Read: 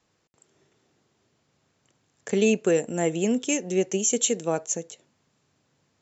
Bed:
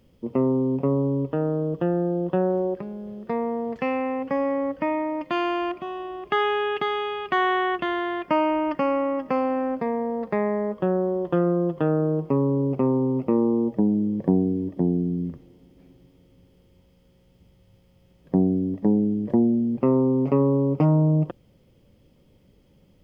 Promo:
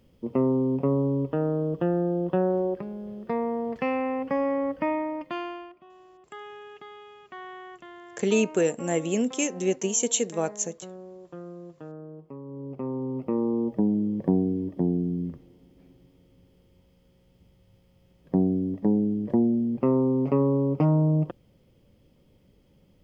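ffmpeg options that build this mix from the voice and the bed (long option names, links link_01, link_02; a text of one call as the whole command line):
ffmpeg -i stem1.wav -i stem2.wav -filter_complex "[0:a]adelay=5900,volume=-1.5dB[link_01];[1:a]volume=15.5dB,afade=type=out:start_time=4.89:duration=0.81:silence=0.125893,afade=type=in:start_time=12.44:duration=1.38:silence=0.141254[link_02];[link_01][link_02]amix=inputs=2:normalize=0" out.wav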